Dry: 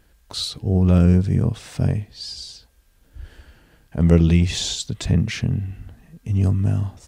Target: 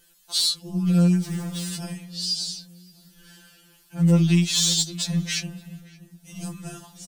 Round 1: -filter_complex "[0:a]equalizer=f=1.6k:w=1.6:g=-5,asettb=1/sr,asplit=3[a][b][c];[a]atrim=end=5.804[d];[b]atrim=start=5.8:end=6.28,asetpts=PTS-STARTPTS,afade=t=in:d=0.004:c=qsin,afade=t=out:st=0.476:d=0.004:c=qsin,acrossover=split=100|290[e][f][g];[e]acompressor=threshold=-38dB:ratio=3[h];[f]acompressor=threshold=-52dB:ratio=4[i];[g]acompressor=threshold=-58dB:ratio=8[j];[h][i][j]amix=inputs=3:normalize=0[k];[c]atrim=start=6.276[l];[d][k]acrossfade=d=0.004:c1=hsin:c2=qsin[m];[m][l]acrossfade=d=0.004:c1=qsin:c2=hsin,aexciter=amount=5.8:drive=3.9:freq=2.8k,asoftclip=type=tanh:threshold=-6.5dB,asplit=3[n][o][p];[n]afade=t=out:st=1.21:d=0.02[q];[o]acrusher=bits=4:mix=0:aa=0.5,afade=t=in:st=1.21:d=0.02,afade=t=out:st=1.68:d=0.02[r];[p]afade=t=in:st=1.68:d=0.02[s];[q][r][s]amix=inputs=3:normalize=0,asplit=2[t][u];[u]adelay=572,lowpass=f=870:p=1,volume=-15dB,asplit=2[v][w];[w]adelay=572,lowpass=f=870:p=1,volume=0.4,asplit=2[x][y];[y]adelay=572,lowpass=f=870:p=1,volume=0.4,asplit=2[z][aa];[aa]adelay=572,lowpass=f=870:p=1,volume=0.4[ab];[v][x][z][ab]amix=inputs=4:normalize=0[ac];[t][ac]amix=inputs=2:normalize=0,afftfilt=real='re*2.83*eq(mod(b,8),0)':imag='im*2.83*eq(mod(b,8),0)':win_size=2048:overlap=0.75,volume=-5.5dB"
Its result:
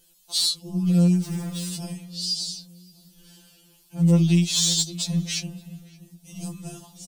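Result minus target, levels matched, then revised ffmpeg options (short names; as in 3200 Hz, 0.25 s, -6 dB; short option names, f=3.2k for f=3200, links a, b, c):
2000 Hz band -4.0 dB
-filter_complex "[0:a]equalizer=f=1.6k:w=1.6:g=7,asettb=1/sr,asplit=3[a][b][c];[a]atrim=end=5.804[d];[b]atrim=start=5.8:end=6.28,asetpts=PTS-STARTPTS,afade=t=in:d=0.004:c=qsin,afade=t=out:st=0.476:d=0.004:c=qsin,acrossover=split=100|290[e][f][g];[e]acompressor=threshold=-38dB:ratio=3[h];[f]acompressor=threshold=-52dB:ratio=4[i];[g]acompressor=threshold=-58dB:ratio=8[j];[h][i][j]amix=inputs=3:normalize=0[k];[c]atrim=start=6.276[l];[d][k]acrossfade=d=0.004:c1=hsin:c2=qsin[m];[m][l]acrossfade=d=0.004:c1=qsin:c2=hsin,aexciter=amount=5.8:drive=3.9:freq=2.8k,asoftclip=type=tanh:threshold=-6.5dB,asplit=3[n][o][p];[n]afade=t=out:st=1.21:d=0.02[q];[o]acrusher=bits=4:mix=0:aa=0.5,afade=t=in:st=1.21:d=0.02,afade=t=out:st=1.68:d=0.02[r];[p]afade=t=in:st=1.68:d=0.02[s];[q][r][s]amix=inputs=3:normalize=0,asplit=2[t][u];[u]adelay=572,lowpass=f=870:p=1,volume=-15dB,asplit=2[v][w];[w]adelay=572,lowpass=f=870:p=1,volume=0.4,asplit=2[x][y];[y]adelay=572,lowpass=f=870:p=1,volume=0.4,asplit=2[z][aa];[aa]adelay=572,lowpass=f=870:p=1,volume=0.4[ab];[v][x][z][ab]amix=inputs=4:normalize=0[ac];[t][ac]amix=inputs=2:normalize=0,afftfilt=real='re*2.83*eq(mod(b,8),0)':imag='im*2.83*eq(mod(b,8),0)':win_size=2048:overlap=0.75,volume=-5.5dB"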